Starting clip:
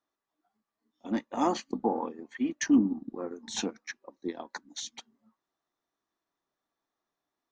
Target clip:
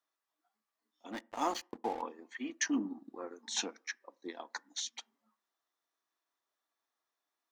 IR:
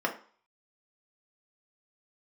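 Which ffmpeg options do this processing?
-filter_complex "[0:a]highpass=frequency=1100:poles=1,asettb=1/sr,asplit=3[link_01][link_02][link_03];[link_01]atrim=end=1.124[link_04];[link_02]atrim=start=1.12:end=2.02,asetpts=PTS-STARTPTS,afade=type=in:duration=0.004:curve=qsin,afade=type=out:start_time=0.896:duration=0.004:curve=qsin,aeval=exprs='sgn(val(0))*max(abs(val(0))-0.00422,0)':channel_layout=same[link_05];[link_03]atrim=start=2.016[link_06];[link_04][link_05]acrossfade=duration=0.004:curve1=hsin:curve2=qsin[link_07];[link_07][link_06]acrossfade=duration=0.004:curve1=qsin:curve2=hsin,asplit=2[link_08][link_09];[1:a]atrim=start_sample=2205,lowshelf=frequency=430:gain=7.5[link_10];[link_09][link_10]afir=irnorm=-1:irlink=0,volume=-28dB[link_11];[link_08][link_11]amix=inputs=2:normalize=0"

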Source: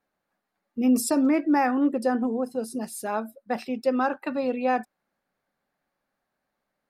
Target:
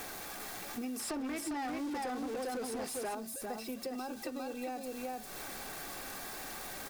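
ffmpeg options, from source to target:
ffmpeg -i in.wav -filter_complex "[0:a]aeval=exprs='val(0)+0.5*0.0141*sgn(val(0))':channel_layout=same,bandreject=frequency=3000:width=17,aecho=1:1:401:0.596,acrossover=split=730|2900[link_01][link_02][link_03];[link_01]acompressor=threshold=-26dB:ratio=4[link_04];[link_02]acompressor=threshold=-41dB:ratio=4[link_05];[link_03]acompressor=threshold=-42dB:ratio=4[link_06];[link_04][link_05][link_06]amix=inputs=3:normalize=0,highshelf=frequency=4700:gain=8.5,aecho=1:1:2.6:0.34,asettb=1/sr,asplit=3[link_07][link_08][link_09];[link_07]atrim=end=0.994[link_10];[link_08]atrim=start=0.99:end=3.15,asetpts=PTS-STARTPTS,afade=type=in:duration=0.004:curve=qsin,afade=type=out:start_time=2.156:duration=0.004:curve=qsin,asplit=2[link_11][link_12];[link_12]highpass=frequency=720:poles=1,volume=21dB,asoftclip=type=tanh:threshold=-16.5dB[link_13];[link_11][link_13]amix=inputs=2:normalize=0,lowpass=frequency=4000:poles=1,volume=-6dB[link_14];[link_09]atrim=start=3.146[link_15];[link_10][link_14]acrossfade=duration=0.004:curve1=hsin:curve2=qsin[link_16];[link_16][link_15]acrossfade=duration=0.004:curve1=qsin:curve2=hsin,acompressor=threshold=-38dB:ratio=3,volume=-2dB" out.wav

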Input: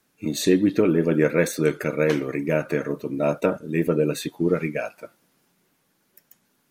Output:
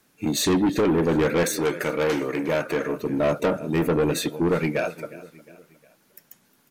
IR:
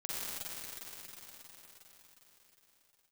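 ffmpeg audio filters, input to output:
-filter_complex "[0:a]aecho=1:1:358|716|1074:0.0944|0.0406|0.0175,asoftclip=type=tanh:threshold=-21.5dB,asettb=1/sr,asplit=3[link_01][link_02][link_03];[link_01]atrim=end=1.434[link_04];[link_02]atrim=start=1.43:end=2.95,asetpts=PTS-STARTPTS,afade=type=in:duration=0.004:curve=qsin,afade=type=out:start_time=1.516:duration=0.004:curve=qsin,lowshelf=frequency=160:gain=-11.5[link_05];[link_03]atrim=start=2.946[link_06];[link_04][link_05]acrossfade=duration=0.004:curve1=hsin:curve2=qsin[link_07];[link_07][link_06]acrossfade=duration=0.004:curve1=qsin:curve2=hsin,volume=5dB"

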